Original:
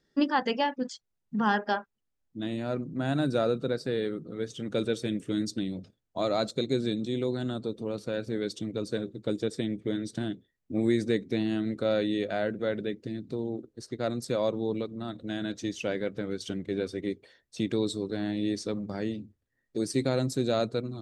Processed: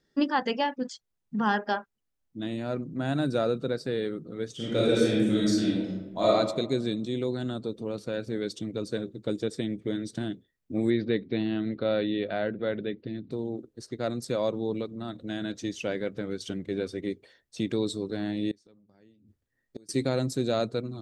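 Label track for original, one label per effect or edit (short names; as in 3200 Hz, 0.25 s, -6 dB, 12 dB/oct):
4.550000	6.270000	reverb throw, RT60 1.1 s, DRR -6.5 dB
10.900000	13.310000	steep low-pass 4400 Hz 48 dB/oct
18.510000	19.890000	flipped gate shuts at -29 dBFS, range -27 dB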